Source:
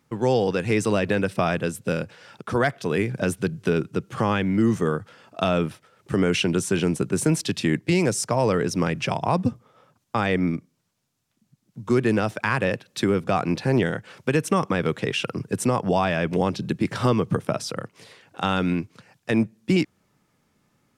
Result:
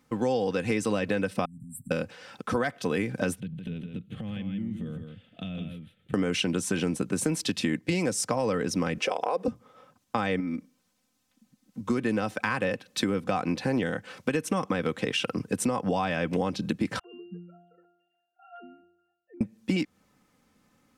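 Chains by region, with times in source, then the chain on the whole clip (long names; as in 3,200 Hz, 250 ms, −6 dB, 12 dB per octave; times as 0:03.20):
0:01.45–0:01.91: comb filter 7.2 ms, depth 82% + downward compressor 12 to 1, threshold −34 dBFS + linear-phase brick-wall band-stop 260–7,400 Hz
0:03.40–0:06.14: drawn EQ curve 190 Hz 0 dB, 340 Hz −13 dB, 670 Hz −15 dB, 1,000 Hz −27 dB, 2,000 Hz −11 dB, 3,500 Hz −4 dB, 5,200 Hz −27 dB, 11,000 Hz −16 dB + downward compressor, threshold −32 dBFS + single-tap delay 162 ms −6 dB
0:08.98–0:09.48: high-pass with resonance 450 Hz, resonance Q 3.9 + downward compressor 2.5 to 1, threshold −21 dBFS
0:10.40–0:11.81: comb filter 3.9 ms, depth 55% + downward compressor 4 to 1, threshold −29 dBFS
0:16.99–0:19.41: three sine waves on the formant tracks + resonances in every octave F, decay 0.79 s
whole clip: comb filter 3.9 ms, depth 45%; downward compressor 4 to 1, threshold −24 dBFS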